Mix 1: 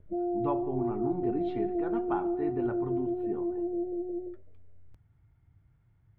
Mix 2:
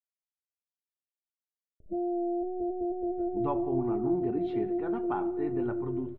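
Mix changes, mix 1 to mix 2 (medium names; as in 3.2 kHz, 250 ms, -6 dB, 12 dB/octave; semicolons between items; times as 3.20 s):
speech: entry +3.00 s; background: entry +1.80 s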